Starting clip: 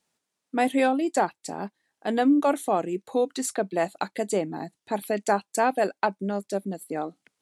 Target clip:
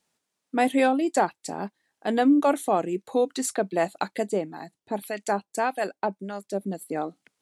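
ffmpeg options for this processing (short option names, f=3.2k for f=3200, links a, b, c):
-filter_complex "[0:a]asettb=1/sr,asplit=3[a][b][c];[a]atrim=end=4.284[d];[b]atrim=start=4.28:end=6.61,asetpts=PTS-STARTPTS,afade=t=in:d=0.004:c=qsin,afade=t=out:st=2.326:d=0.004:c=qsin,acrossover=split=810[e][f];[e]aeval=exprs='val(0)*(1-0.7/2+0.7/2*cos(2*PI*1.7*n/s))':c=same[g];[f]aeval=exprs='val(0)*(1-0.7/2-0.7/2*cos(2*PI*1.7*n/s))':c=same[h];[g][h]amix=inputs=2:normalize=0[i];[c]atrim=start=6.606[j];[d][i]acrossfade=d=0.004:c1=hsin:c2=qsin[k];[k][j]acrossfade=d=0.004:c1=qsin:c2=hsin,volume=1dB"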